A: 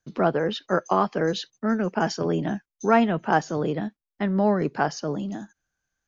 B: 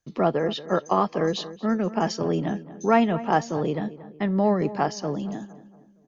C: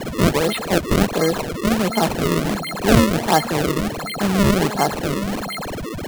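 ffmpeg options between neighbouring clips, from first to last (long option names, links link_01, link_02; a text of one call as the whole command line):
ffmpeg -i in.wav -filter_complex "[0:a]bandreject=frequency=1500:width=6.6,asplit=2[link_01][link_02];[link_02]adelay=231,lowpass=frequency=2100:poles=1,volume=-15.5dB,asplit=2[link_03][link_04];[link_04]adelay=231,lowpass=frequency=2100:poles=1,volume=0.45,asplit=2[link_05][link_06];[link_06]adelay=231,lowpass=frequency=2100:poles=1,volume=0.45,asplit=2[link_07][link_08];[link_08]adelay=231,lowpass=frequency=2100:poles=1,volume=0.45[link_09];[link_01][link_03][link_05][link_07][link_09]amix=inputs=5:normalize=0" out.wav
ffmpeg -i in.wav -af "aeval=exprs='val(0)+0.0316*sin(2*PI*4200*n/s)':channel_layout=same,acrusher=samples=32:mix=1:aa=0.000001:lfo=1:lforange=51.2:lforate=1.4,volume=5dB" out.wav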